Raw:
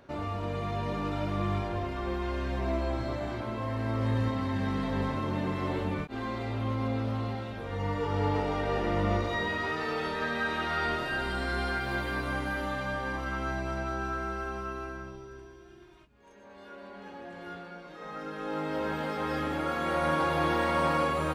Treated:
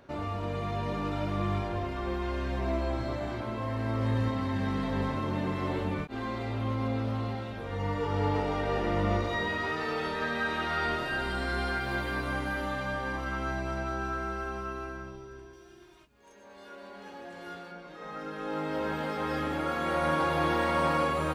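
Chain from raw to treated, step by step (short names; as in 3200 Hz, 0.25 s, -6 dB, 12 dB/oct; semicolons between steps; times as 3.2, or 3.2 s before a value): 15.53–17.72 tone controls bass -4 dB, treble +7 dB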